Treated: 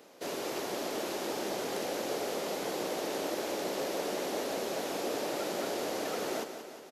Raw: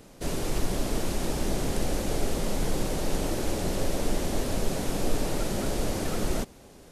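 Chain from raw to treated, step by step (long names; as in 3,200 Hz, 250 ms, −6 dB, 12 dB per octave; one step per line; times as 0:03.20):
Chebyshev high-pass filter 430 Hz, order 2
parametric band 9,000 Hz −8.5 dB 0.57 octaves
on a send: repeating echo 181 ms, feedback 60%, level −10 dB
on the sum: level −1 dB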